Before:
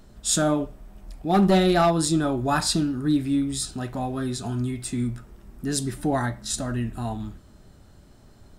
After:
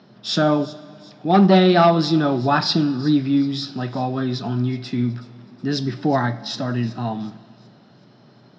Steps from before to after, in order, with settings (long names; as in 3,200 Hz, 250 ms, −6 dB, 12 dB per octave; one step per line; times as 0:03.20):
Chebyshev band-pass filter 120–5,400 Hz, order 5
delay with a high-pass on its return 372 ms, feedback 42%, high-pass 3,900 Hz, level −15.5 dB
on a send at −18 dB: convolution reverb RT60 2.4 s, pre-delay 5 ms
on the sum: level +5.5 dB